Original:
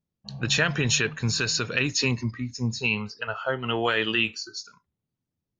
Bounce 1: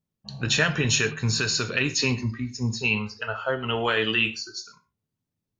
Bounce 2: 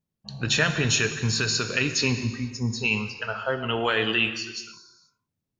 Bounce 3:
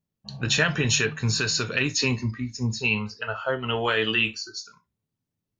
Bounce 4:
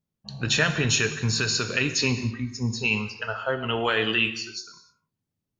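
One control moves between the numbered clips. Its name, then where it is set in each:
gated-style reverb, gate: 150 ms, 510 ms, 90 ms, 330 ms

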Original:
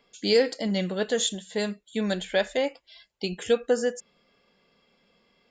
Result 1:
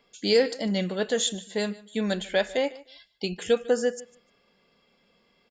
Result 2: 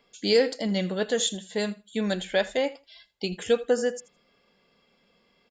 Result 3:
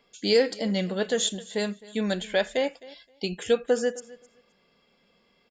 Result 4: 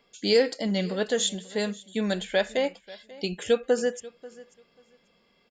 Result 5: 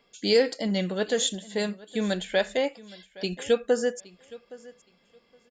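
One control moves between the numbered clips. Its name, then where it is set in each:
feedback delay, time: 149 ms, 81 ms, 261 ms, 538 ms, 817 ms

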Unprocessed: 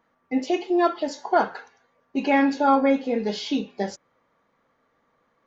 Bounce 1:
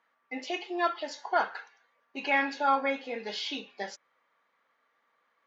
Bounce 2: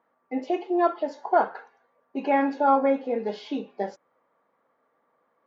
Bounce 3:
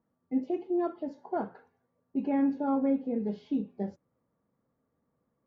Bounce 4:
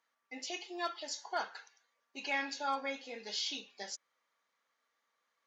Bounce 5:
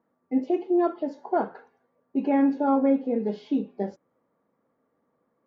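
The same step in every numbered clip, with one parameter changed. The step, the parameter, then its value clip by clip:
band-pass filter, frequency: 2.4 kHz, 710 Hz, 110 Hz, 7 kHz, 280 Hz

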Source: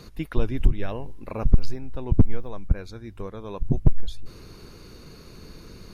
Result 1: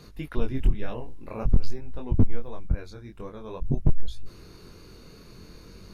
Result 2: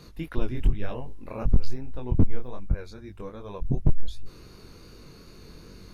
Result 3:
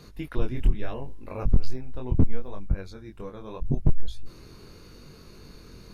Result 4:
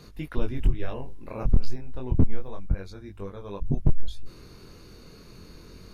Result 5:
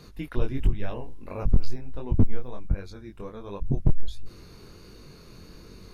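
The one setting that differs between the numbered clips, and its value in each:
chorus, rate: 0.49 Hz, 2.6 Hz, 0.76 Hz, 0.3 Hz, 1.4 Hz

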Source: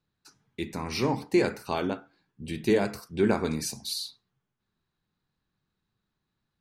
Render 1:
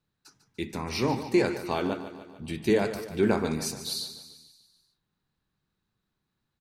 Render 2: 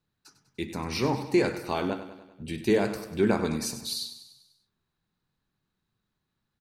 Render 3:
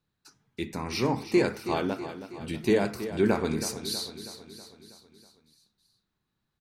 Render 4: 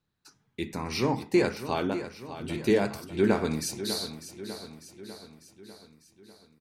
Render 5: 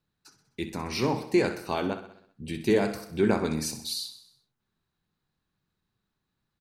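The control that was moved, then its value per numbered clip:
feedback delay, time: 146 ms, 98 ms, 322 ms, 598 ms, 64 ms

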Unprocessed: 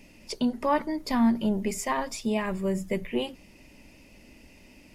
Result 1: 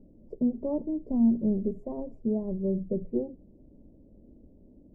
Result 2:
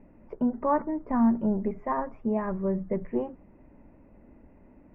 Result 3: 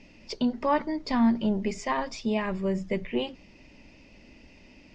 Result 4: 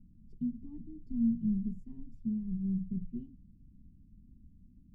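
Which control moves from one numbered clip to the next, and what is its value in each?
inverse Chebyshev low-pass, stop band from: 1.4 kHz, 3.7 kHz, 12 kHz, 520 Hz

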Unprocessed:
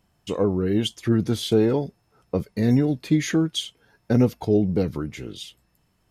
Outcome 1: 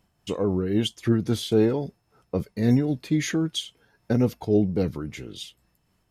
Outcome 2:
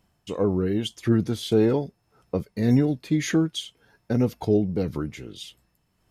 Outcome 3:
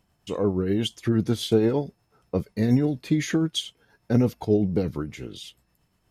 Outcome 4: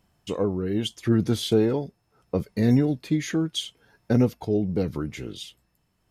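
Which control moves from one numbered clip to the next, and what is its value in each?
tremolo, rate: 3.7 Hz, 1.8 Hz, 8.4 Hz, 0.77 Hz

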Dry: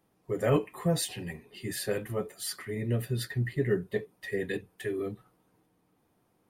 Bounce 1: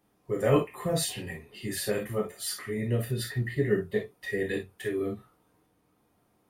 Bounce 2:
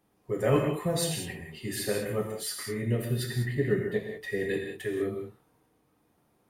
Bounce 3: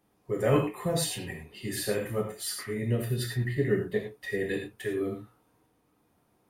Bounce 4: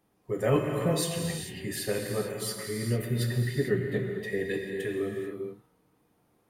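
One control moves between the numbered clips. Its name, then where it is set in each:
gated-style reverb, gate: 80 ms, 220 ms, 130 ms, 470 ms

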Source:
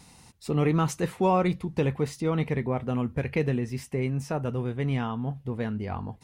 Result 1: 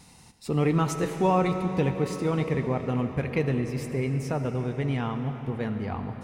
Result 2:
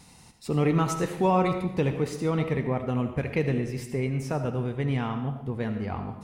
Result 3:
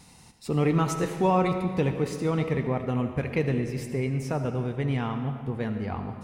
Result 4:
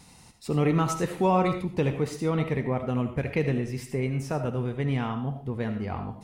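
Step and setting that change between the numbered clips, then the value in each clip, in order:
algorithmic reverb, RT60: 5 s, 0.9 s, 1.9 s, 0.41 s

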